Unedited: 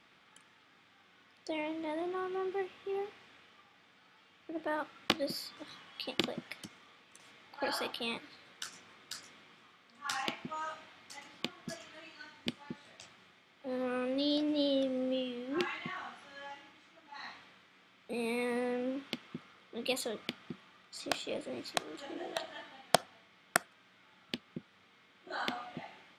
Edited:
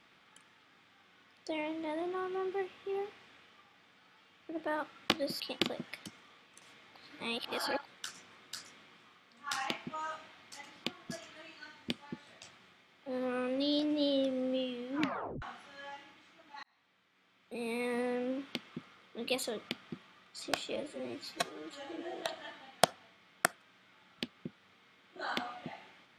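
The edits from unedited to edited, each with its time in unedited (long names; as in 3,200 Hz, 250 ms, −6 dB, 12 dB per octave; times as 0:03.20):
0:05.40–0:05.98: remove
0:07.54–0:08.43: reverse
0:15.53: tape stop 0.47 s
0:17.21–0:18.57: fade in
0:21.34–0:22.28: time-stretch 1.5×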